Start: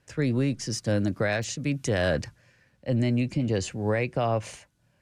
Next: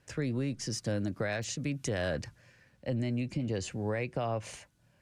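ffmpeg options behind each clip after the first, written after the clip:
-af "acompressor=threshold=-35dB:ratio=2"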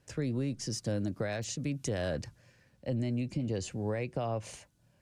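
-af "equalizer=f=1.8k:t=o:w=1.7:g=-5"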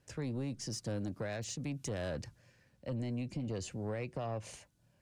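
-af "asoftclip=type=tanh:threshold=-27.5dB,volume=-3dB"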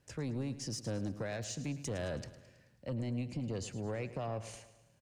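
-af "aecho=1:1:108|216|324|432|540:0.188|0.0998|0.0529|0.028|0.0149"

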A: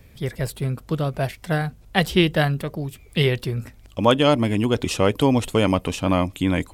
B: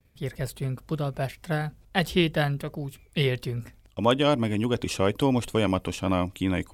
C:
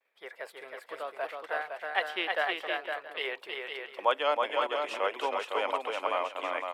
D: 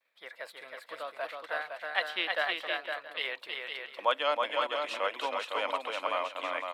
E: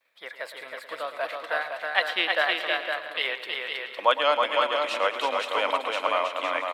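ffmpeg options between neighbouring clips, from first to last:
-af "agate=range=-33dB:threshold=-41dB:ratio=3:detection=peak,volume=-5dB"
-filter_complex "[0:a]highpass=f=390:w=0.5412,highpass=f=390:w=1.3066,acrossover=split=590 2800:gain=0.158 1 0.126[a][b][c];[a][b][c]amix=inputs=3:normalize=0,asplit=2[d][e];[e]aecho=0:1:321|509|674:0.631|0.531|0.141[f];[d][f]amix=inputs=2:normalize=0"
-af "equalizer=f=400:t=o:w=0.33:g=-11,equalizer=f=800:t=o:w=0.33:g=-5,equalizer=f=4k:t=o:w=0.33:g=8"
-af "aecho=1:1:111|222|333|444|555|666:0.224|0.123|0.0677|0.0372|0.0205|0.0113,volume=6.5dB"

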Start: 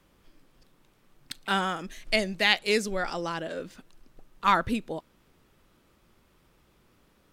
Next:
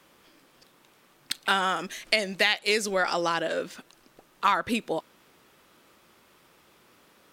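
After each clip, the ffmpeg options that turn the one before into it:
-af "highpass=f=470:p=1,acompressor=threshold=-28dB:ratio=6,volume=8.5dB"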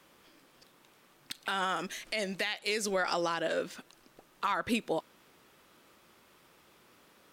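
-af "alimiter=limit=-17.5dB:level=0:latency=1:release=92,volume=-2.5dB"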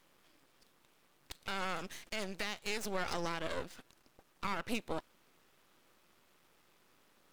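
-af "aeval=exprs='max(val(0),0)':c=same,volume=-3dB"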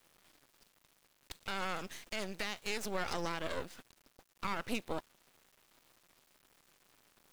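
-af "acrusher=bits=9:mix=0:aa=0.000001"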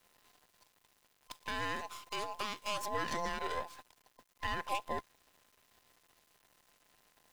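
-af "afftfilt=real='real(if(between(b,1,1008),(2*floor((b-1)/48)+1)*48-b,b),0)':imag='imag(if(between(b,1,1008),(2*floor((b-1)/48)+1)*48-b,b),0)*if(between(b,1,1008),-1,1)':win_size=2048:overlap=0.75,volume=-1dB"

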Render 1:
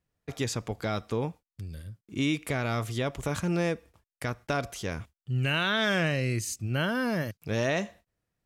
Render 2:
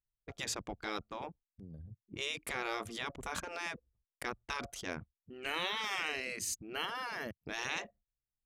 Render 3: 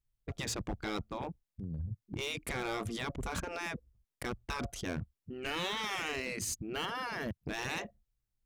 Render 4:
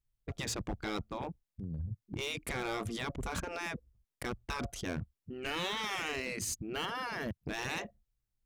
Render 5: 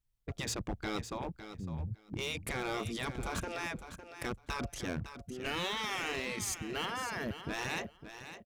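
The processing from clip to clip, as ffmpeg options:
-af "anlmdn=0.631,afftfilt=real='re*lt(hypot(re,im),0.112)':imag='im*lt(hypot(re,im),0.112)':win_size=1024:overlap=0.75,volume=-2.5dB"
-af "lowshelf=f=300:g=11.5,volume=31.5dB,asoftclip=hard,volume=-31.5dB,volume=1dB"
-af anull
-af "aecho=1:1:557|1114:0.282|0.0451"

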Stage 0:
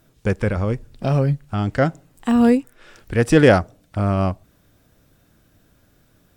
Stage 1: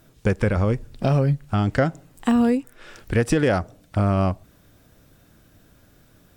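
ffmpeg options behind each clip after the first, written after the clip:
-af "alimiter=limit=-6.5dB:level=0:latency=1:release=305,acompressor=threshold=-19dB:ratio=4,volume=3dB"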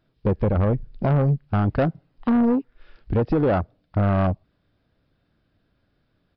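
-af "afwtdn=0.0631,aresample=11025,asoftclip=type=tanh:threshold=-18dB,aresample=44100,volume=3.5dB"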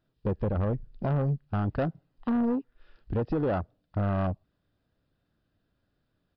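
-af "bandreject=f=2.2k:w=9.8,volume=-7.5dB"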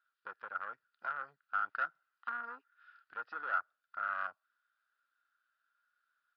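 -af "highpass=f=1.4k:t=q:w=11,volume=-8.5dB"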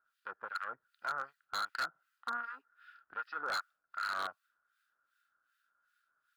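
-filter_complex "[0:a]acrossover=split=1400[a][b];[a]aeval=exprs='val(0)*(1-1/2+1/2*cos(2*PI*2.6*n/s))':c=same[c];[b]aeval=exprs='val(0)*(1-1/2-1/2*cos(2*PI*2.6*n/s))':c=same[d];[c][d]amix=inputs=2:normalize=0,aeval=exprs='0.015*(abs(mod(val(0)/0.015+3,4)-2)-1)':c=same,volume=8dB"

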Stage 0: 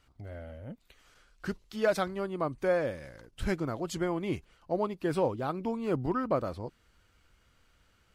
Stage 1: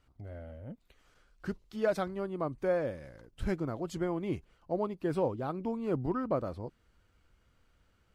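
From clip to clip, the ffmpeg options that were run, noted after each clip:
-af "tiltshelf=f=1.2k:g=3.5,volume=-4.5dB"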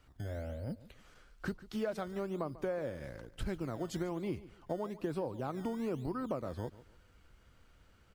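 -filter_complex "[0:a]acrossover=split=210|5300[a][b][c];[a]acrusher=samples=18:mix=1:aa=0.000001:lfo=1:lforange=18:lforate=1.1[d];[d][b][c]amix=inputs=3:normalize=0,acompressor=threshold=-39dB:ratio=6,aecho=1:1:144|288|432:0.133|0.04|0.012,volume=5dB"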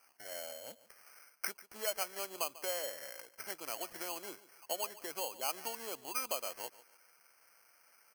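-af "asuperpass=centerf=1200:order=4:qfactor=0.75,acrusher=samples=12:mix=1:aa=0.000001,crystalizer=i=2.5:c=0,volume=2dB"

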